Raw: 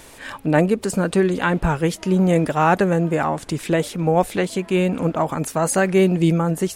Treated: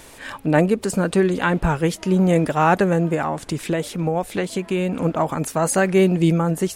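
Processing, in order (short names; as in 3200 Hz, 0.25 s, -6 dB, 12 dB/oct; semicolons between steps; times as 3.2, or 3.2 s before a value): 3.14–4.97 compressor, threshold -18 dBFS, peak gain reduction 7.5 dB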